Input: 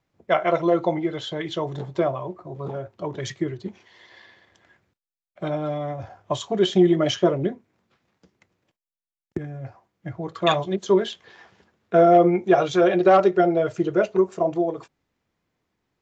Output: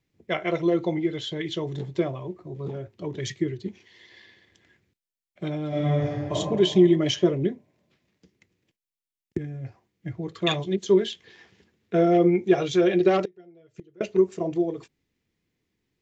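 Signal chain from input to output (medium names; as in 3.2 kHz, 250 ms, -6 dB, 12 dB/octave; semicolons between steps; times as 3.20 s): high-order bell 910 Hz -10 dB; 5.68–6.32 s: reverb throw, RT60 1.8 s, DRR -8.5 dB; 13.25–14.01 s: inverted gate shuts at -21 dBFS, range -29 dB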